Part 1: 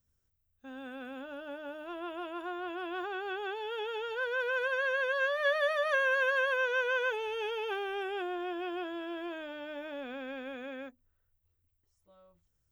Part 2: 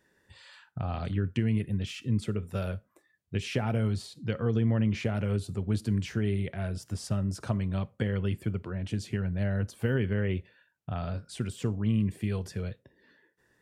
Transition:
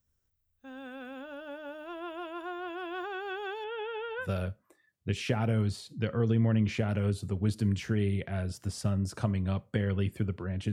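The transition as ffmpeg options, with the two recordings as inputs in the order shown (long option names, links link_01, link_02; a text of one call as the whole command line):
ffmpeg -i cue0.wav -i cue1.wav -filter_complex "[0:a]asettb=1/sr,asplit=3[link_01][link_02][link_03];[link_01]atrim=end=3.644[link_04];[link_02]atrim=start=3.64:end=4.28,asetpts=PTS-STARTPTS,afade=type=in:duration=0.004:curve=qsin,afade=type=out:start_time=0.636:duration=0.004:curve=qsin,lowpass=frequency=3100:width=0.5412,lowpass=frequency=3100:width=1.3066[link_05];[link_03]atrim=start=4.276[link_06];[link_04][link_05]acrossfade=duration=0.004:curve1=hsin:curve2=qsin[link_07];[link_07][link_06]acrossfade=duration=0.004:curve1=qsin:curve2=hsin,apad=whole_dur=10.72,atrim=end=10.72,atrim=end=4.28,asetpts=PTS-STARTPTS[link_08];[1:a]atrim=start=2.44:end=8.98,asetpts=PTS-STARTPTS[link_09];[link_08][link_09]acrossfade=duration=0.1:curve1=tri:curve2=tri" out.wav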